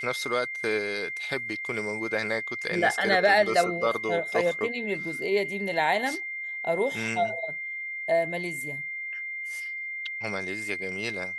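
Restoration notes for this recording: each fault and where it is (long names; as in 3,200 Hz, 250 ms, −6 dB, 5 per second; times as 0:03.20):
whistle 2,100 Hz −32 dBFS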